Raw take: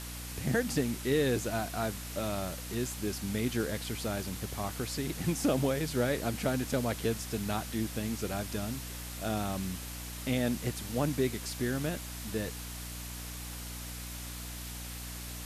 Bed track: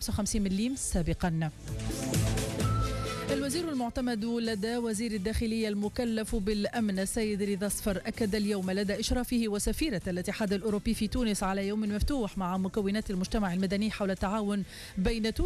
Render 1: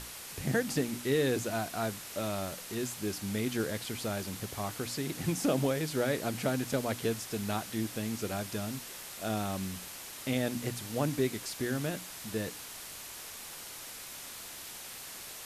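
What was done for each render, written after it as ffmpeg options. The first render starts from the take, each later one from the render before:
-af "bandreject=f=60:t=h:w=6,bandreject=f=120:t=h:w=6,bandreject=f=180:t=h:w=6,bandreject=f=240:t=h:w=6,bandreject=f=300:t=h:w=6"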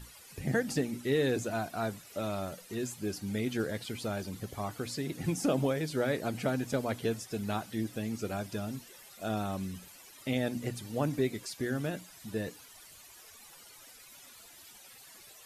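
-af "afftdn=nr=14:nf=-45"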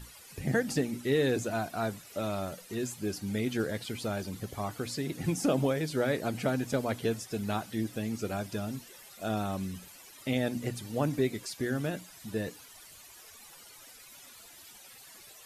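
-af "volume=1.5dB"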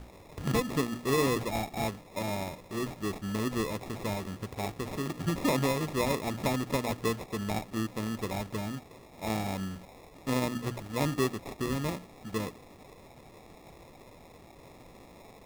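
-af "acrusher=samples=29:mix=1:aa=0.000001"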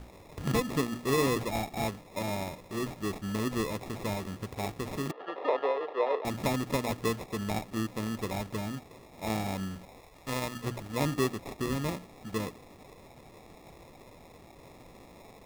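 -filter_complex "[0:a]asettb=1/sr,asplit=3[a][b][c];[a]atrim=end=5.114[d];[b]atrim=start=5.11:end=6.25,asetpts=PTS-STARTPTS,afade=t=in:d=0.004:c=qsin,afade=t=out:st=1.136:d=0.004:c=qsin,highpass=f=450:w=0.5412,highpass=f=450:w=1.3066,equalizer=f=450:t=q:w=4:g=9,equalizer=f=750:t=q:w=4:g=4,equalizer=f=2.3k:t=q:w=4:g=-10,lowpass=f=2.9k:w=0.5412,lowpass=f=2.9k:w=1.3066[e];[c]atrim=start=6.246[f];[d][e]acrossfade=d=0.004:c1=hsin:c2=qsin[g];[g][f]acrossfade=d=0.004:c1=qsin:c2=hsin,asettb=1/sr,asplit=3[h][i][j];[h]atrim=end=10.004[k];[i]atrim=start=10:end=10.64,asetpts=PTS-STARTPTS,afade=t=in:d=0.004:c=qsin,afade=t=out:st=0.636:d=0.004:c=qsin,equalizer=f=250:t=o:w=2:g=-8[l];[j]atrim=start=10.636[m];[k][l]acrossfade=d=0.004:c1=hsin:c2=qsin[n];[n][m]acrossfade=d=0.004:c1=qsin:c2=hsin"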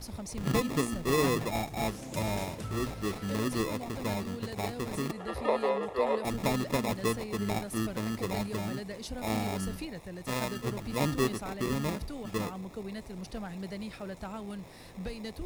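-filter_complex "[1:a]volume=-10dB[a];[0:a][a]amix=inputs=2:normalize=0"

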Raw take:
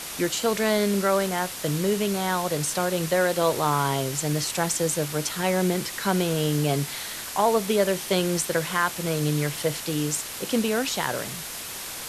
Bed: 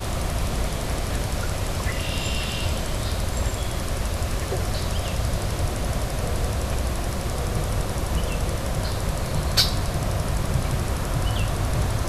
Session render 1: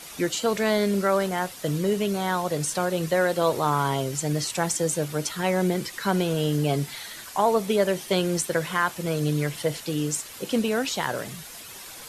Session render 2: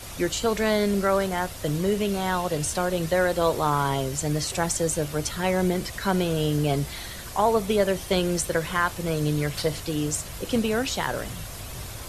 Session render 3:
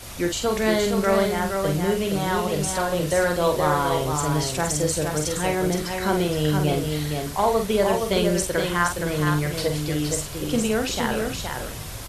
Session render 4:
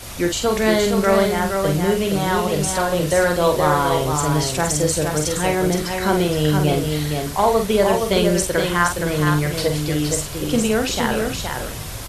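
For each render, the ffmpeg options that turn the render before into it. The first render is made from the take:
-af "afftdn=nr=9:nf=-36"
-filter_complex "[1:a]volume=-15dB[a];[0:a][a]amix=inputs=2:normalize=0"
-filter_complex "[0:a]asplit=2[a][b];[b]adelay=46,volume=-6dB[c];[a][c]amix=inputs=2:normalize=0,aecho=1:1:468:0.562"
-af "volume=4dB"

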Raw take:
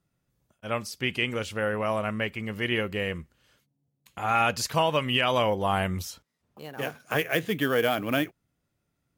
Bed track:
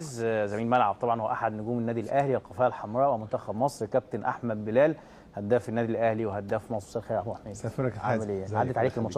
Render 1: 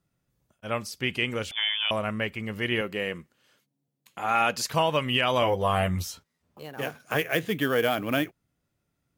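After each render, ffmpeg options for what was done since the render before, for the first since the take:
-filter_complex "[0:a]asettb=1/sr,asplit=3[a][b][c];[a]atrim=end=1.514[d];[b]atrim=start=1.51:end=1.91,asetpts=PTS-STARTPTS,afade=t=in:d=0.004:c=qsin,afade=t=out:st=0.396:d=0.004:c=qsin,lowpass=f=3.1k:t=q:w=0.5098,lowpass=f=3.1k:t=q:w=0.6013,lowpass=f=3.1k:t=q:w=0.9,lowpass=f=3.1k:t=q:w=2.563,afreqshift=-3600[e];[c]atrim=start=1.906[f];[d][e]acrossfade=d=0.004:c1=hsin:c2=qsin[g];[g][f]acrossfade=d=0.004:c1=qsin:c2=hsin,asettb=1/sr,asplit=3[h][i][j];[h]atrim=end=2.814[k];[i]atrim=start=2.81:end=4.68,asetpts=PTS-STARTPTS,afade=t=in:d=0.004:c=qsin,afade=t=out:st=1.866:d=0.004:c=qsin,highpass=180[l];[j]atrim=start=4.676[m];[k][l]acrossfade=d=0.004:c1=hsin:c2=qsin[n];[n][m]acrossfade=d=0.004:c1=qsin:c2=hsin,asettb=1/sr,asplit=3[o][p][q];[o]atrim=end=5.414[r];[p]atrim=start=5.41:end=6.63,asetpts=PTS-STARTPTS,afade=t=in:d=0.004:c=qsin,afade=t=out:st=1.216:d=0.004:c=qsin,asplit=2[s][t];[t]adelay=12,volume=-4dB[u];[s][u]amix=inputs=2:normalize=0,atrim=end_sample=53802[v];[q]atrim=start=6.626[w];[r][v]acrossfade=d=0.004:c1=hsin:c2=qsin[x];[x][w]acrossfade=d=0.004:c1=qsin:c2=hsin"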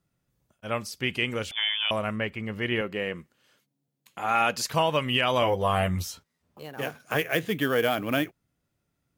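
-filter_complex "[0:a]asettb=1/sr,asplit=3[a][b][c];[a]atrim=end=2.164[d];[b]atrim=start=2.16:end=3.18,asetpts=PTS-STARTPTS,afade=t=in:d=0.004:c=qsin,afade=t=out:st=1.016:d=0.004:c=qsin,aemphasis=mode=reproduction:type=cd[e];[c]atrim=start=3.176[f];[d][e]acrossfade=d=0.004:c1=hsin:c2=qsin[g];[g][f]acrossfade=d=0.004:c1=qsin:c2=hsin"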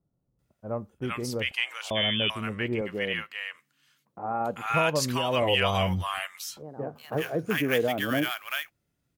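-filter_complex "[0:a]acrossover=split=990[a][b];[b]adelay=390[c];[a][c]amix=inputs=2:normalize=0"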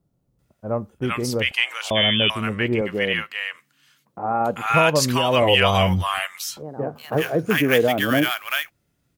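-af "volume=7.5dB"

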